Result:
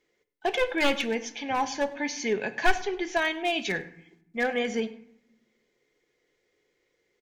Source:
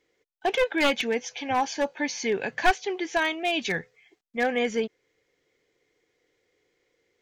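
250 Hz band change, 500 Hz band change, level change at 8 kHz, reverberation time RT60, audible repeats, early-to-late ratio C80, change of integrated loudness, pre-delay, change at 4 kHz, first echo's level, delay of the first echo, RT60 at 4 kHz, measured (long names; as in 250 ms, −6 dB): −1.0 dB, −2.0 dB, −1.5 dB, 0.75 s, 1, 17.0 dB, −1.5 dB, 3 ms, −1.5 dB, −22.5 dB, 101 ms, 0.40 s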